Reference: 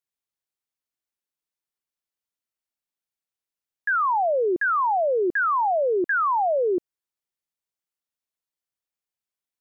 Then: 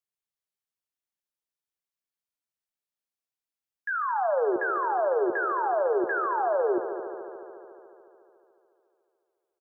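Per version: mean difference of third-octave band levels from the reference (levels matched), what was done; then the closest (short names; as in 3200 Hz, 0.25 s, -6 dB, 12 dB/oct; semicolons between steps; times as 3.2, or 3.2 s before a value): 10.0 dB: harmonic-percussive split percussive -4 dB; doubler 17 ms -10.5 dB; multi-head echo 72 ms, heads all three, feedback 72%, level -15.5 dB; gain -3.5 dB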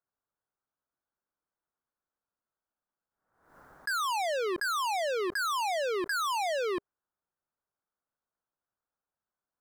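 15.0 dB: EQ curve 400 Hz 0 dB, 580 Hz +2 dB, 1500 Hz +3 dB, 2600 Hz -27 dB; overloaded stage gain 34 dB; backwards sustainer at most 83 dB/s; gain +4 dB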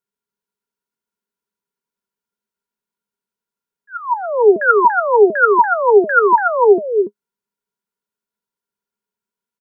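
4.5 dB: auto swell 0.522 s; small resonant body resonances 210/410/960/1400 Hz, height 18 dB, ringing for 65 ms; on a send: echo 0.286 s -5.5 dB; on the sum: gain -1 dB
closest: third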